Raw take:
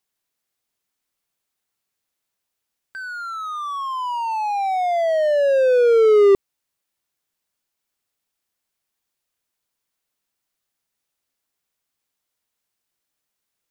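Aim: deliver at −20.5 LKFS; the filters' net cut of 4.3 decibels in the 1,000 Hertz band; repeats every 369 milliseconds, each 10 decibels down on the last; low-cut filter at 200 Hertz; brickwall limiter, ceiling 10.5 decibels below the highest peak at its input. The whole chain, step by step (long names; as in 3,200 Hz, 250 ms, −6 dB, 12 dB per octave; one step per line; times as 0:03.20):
high-pass filter 200 Hz
parametric band 1,000 Hz −6 dB
brickwall limiter −19.5 dBFS
repeating echo 369 ms, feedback 32%, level −10 dB
level +6 dB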